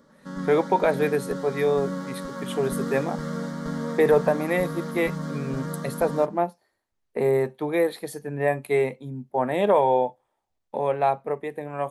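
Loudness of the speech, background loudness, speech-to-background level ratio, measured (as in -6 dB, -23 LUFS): -25.0 LUFS, -32.5 LUFS, 7.5 dB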